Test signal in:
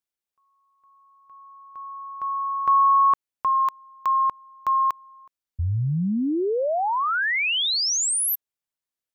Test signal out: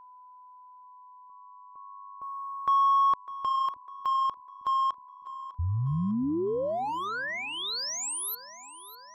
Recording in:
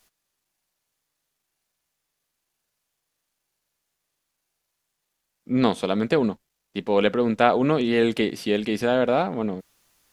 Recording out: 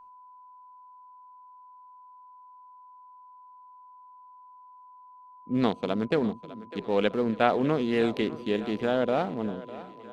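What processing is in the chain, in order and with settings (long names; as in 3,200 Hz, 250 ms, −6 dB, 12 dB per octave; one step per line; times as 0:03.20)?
adaptive Wiener filter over 25 samples
echo with a time of its own for lows and highs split 310 Hz, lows 315 ms, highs 602 ms, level −16 dB
steady tone 1,000 Hz −44 dBFS
level −4.5 dB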